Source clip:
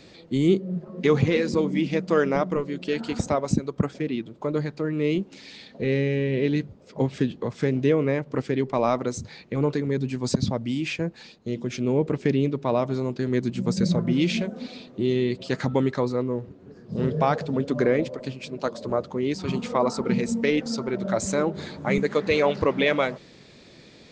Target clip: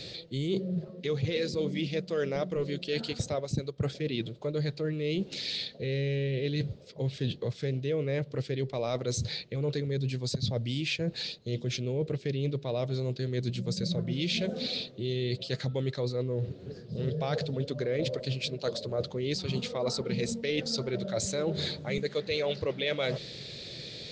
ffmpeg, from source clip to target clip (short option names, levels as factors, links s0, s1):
-af "equalizer=f=125:t=o:w=1:g=8,equalizer=f=250:t=o:w=1:g=-7,equalizer=f=500:t=o:w=1:g=6,equalizer=f=1000:t=o:w=1:g=-9,equalizer=f=4000:t=o:w=1:g=12,areverse,acompressor=threshold=0.0282:ratio=6,areverse,volume=1.33"